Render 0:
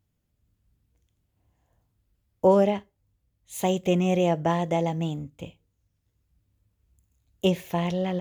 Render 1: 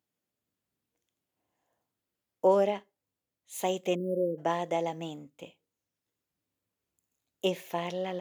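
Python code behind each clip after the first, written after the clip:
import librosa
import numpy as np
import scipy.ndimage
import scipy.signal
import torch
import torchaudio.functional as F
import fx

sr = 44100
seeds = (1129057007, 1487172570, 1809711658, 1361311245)

y = scipy.signal.sosfilt(scipy.signal.butter(2, 310.0, 'highpass', fs=sr, output='sos'), x)
y = fx.spec_erase(y, sr, start_s=3.95, length_s=0.43, low_hz=580.0, high_hz=9100.0)
y = F.gain(torch.from_numpy(y), -3.5).numpy()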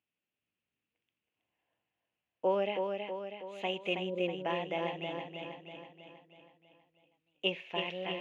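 y = fx.lowpass_res(x, sr, hz=2700.0, q=4.7)
y = fx.echo_feedback(y, sr, ms=322, feedback_pct=54, wet_db=-5.0)
y = F.gain(torch.from_numpy(y), -7.0).numpy()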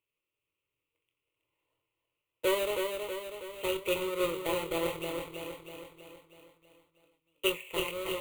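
y = fx.halfwave_hold(x, sr)
y = fx.fixed_phaser(y, sr, hz=1100.0, stages=8)
y = fx.doubler(y, sr, ms=24.0, db=-7.5)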